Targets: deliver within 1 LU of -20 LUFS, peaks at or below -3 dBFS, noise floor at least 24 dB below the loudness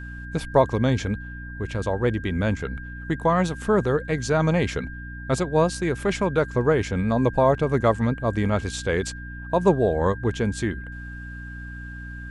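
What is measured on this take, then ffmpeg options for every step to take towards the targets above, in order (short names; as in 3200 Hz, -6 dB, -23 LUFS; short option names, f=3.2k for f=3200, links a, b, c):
hum 60 Hz; harmonics up to 300 Hz; hum level -34 dBFS; steady tone 1600 Hz; tone level -39 dBFS; loudness -23.5 LUFS; peak -5.5 dBFS; loudness target -20.0 LUFS
-> -af "bandreject=f=60:t=h:w=4,bandreject=f=120:t=h:w=4,bandreject=f=180:t=h:w=4,bandreject=f=240:t=h:w=4,bandreject=f=300:t=h:w=4"
-af "bandreject=f=1.6k:w=30"
-af "volume=3.5dB,alimiter=limit=-3dB:level=0:latency=1"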